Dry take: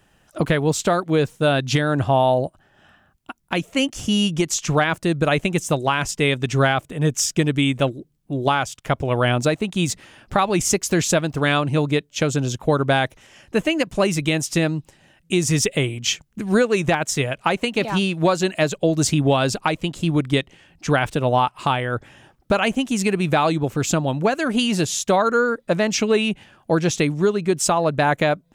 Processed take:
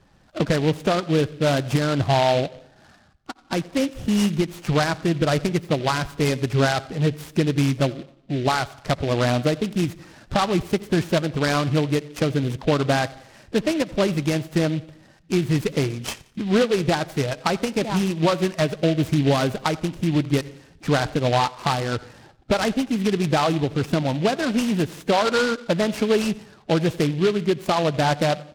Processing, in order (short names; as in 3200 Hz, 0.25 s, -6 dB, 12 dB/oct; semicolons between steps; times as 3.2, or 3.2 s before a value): bin magnitudes rounded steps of 15 dB; high shelf 5200 Hz -11 dB; in parallel at -2 dB: compressor, threshold -32 dBFS, peak gain reduction 17.5 dB; on the sum: air absorption 240 m; feedback echo 88 ms, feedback 42%, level -22.5 dB; on a send at -21 dB: reverb RT60 0.75 s, pre-delay 57 ms; on the sum: noise-modulated delay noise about 2600 Hz, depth 0.064 ms; gain -1.5 dB